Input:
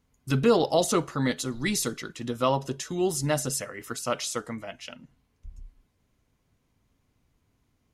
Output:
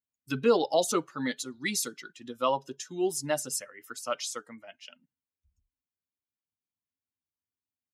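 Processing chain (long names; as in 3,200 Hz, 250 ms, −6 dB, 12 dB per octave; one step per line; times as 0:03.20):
spectral dynamics exaggerated over time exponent 1.5
high-pass filter 260 Hz 12 dB per octave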